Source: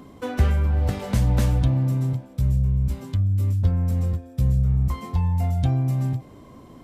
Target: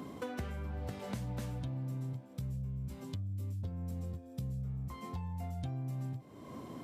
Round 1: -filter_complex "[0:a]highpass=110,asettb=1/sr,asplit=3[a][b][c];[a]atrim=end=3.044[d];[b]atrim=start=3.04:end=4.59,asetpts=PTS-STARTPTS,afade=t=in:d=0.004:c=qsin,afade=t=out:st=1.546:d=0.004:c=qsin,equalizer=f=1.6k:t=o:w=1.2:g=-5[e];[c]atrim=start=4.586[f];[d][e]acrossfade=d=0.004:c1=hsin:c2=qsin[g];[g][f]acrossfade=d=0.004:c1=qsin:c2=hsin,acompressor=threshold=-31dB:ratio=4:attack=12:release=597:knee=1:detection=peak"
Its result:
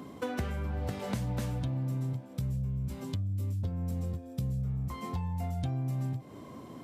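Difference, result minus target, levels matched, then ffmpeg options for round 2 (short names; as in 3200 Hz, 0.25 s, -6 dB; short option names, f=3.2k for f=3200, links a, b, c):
compressor: peak gain reduction -6 dB
-filter_complex "[0:a]highpass=110,asettb=1/sr,asplit=3[a][b][c];[a]atrim=end=3.044[d];[b]atrim=start=3.04:end=4.59,asetpts=PTS-STARTPTS,afade=t=in:d=0.004:c=qsin,afade=t=out:st=1.546:d=0.004:c=qsin,equalizer=f=1.6k:t=o:w=1.2:g=-5[e];[c]atrim=start=4.586[f];[d][e]acrossfade=d=0.004:c1=hsin:c2=qsin[g];[g][f]acrossfade=d=0.004:c1=qsin:c2=hsin,acompressor=threshold=-39dB:ratio=4:attack=12:release=597:knee=1:detection=peak"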